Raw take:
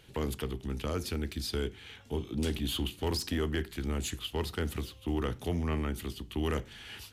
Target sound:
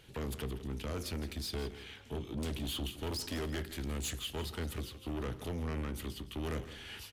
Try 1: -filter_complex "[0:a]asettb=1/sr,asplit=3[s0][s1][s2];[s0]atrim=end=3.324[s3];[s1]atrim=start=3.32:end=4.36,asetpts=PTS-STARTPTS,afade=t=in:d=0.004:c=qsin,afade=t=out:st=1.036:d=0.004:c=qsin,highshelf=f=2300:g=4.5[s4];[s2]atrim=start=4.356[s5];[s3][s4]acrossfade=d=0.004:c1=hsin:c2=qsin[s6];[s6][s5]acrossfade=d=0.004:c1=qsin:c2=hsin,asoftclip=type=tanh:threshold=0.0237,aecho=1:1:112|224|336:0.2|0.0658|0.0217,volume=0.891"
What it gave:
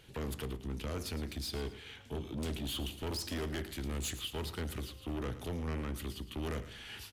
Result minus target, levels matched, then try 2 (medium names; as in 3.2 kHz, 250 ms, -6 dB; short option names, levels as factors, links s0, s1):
echo 54 ms early
-filter_complex "[0:a]asettb=1/sr,asplit=3[s0][s1][s2];[s0]atrim=end=3.324[s3];[s1]atrim=start=3.32:end=4.36,asetpts=PTS-STARTPTS,afade=t=in:d=0.004:c=qsin,afade=t=out:st=1.036:d=0.004:c=qsin,highshelf=f=2300:g=4.5[s4];[s2]atrim=start=4.356[s5];[s3][s4]acrossfade=d=0.004:c1=hsin:c2=qsin[s6];[s6][s5]acrossfade=d=0.004:c1=qsin:c2=hsin,asoftclip=type=tanh:threshold=0.0237,aecho=1:1:166|332|498:0.2|0.0658|0.0217,volume=0.891"